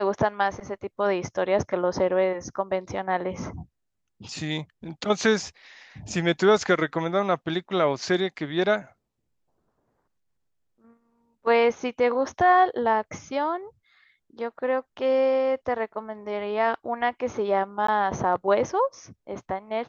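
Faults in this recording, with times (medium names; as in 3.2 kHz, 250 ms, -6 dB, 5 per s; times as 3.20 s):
17.87–17.88 s: dropout 14 ms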